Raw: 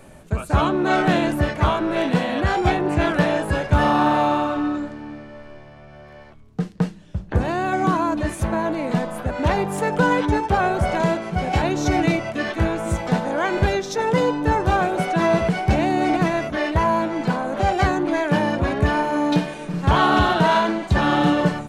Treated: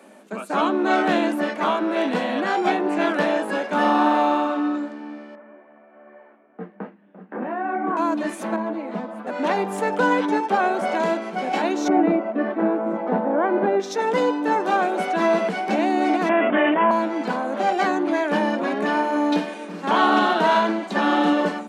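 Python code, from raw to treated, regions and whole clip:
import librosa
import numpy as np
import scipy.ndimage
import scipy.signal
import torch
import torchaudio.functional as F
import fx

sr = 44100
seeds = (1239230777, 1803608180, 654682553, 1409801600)

y = fx.chain(x, sr, fx.lowpass(hz=2100.0, slope=24),
    fx.echo_single(ms=595, db=-9.0),
    fx.detune_double(cents=30), at=(5.35, 7.97))
y = fx.chain(y, sr, fx.lowpass(hz=1800.0, slope=6),
    fx.clip_hard(threshold_db=-14.0),
    fx.ensemble(), at=(8.56, 9.27))
y = fx.chain(y, sr, fx.lowpass(hz=1300.0, slope=12),
    fx.peak_eq(hz=330.0, db=4.0, octaves=2.9), at=(11.88, 13.8))
y = fx.chain(y, sr, fx.steep_lowpass(hz=3300.0, slope=96),
    fx.env_flatten(amount_pct=70), at=(16.29, 16.91))
y = scipy.signal.sosfilt(scipy.signal.cheby1(6, 1.0, 200.0, 'highpass', fs=sr, output='sos'), y)
y = fx.high_shelf(y, sr, hz=6600.0, db=-5.0)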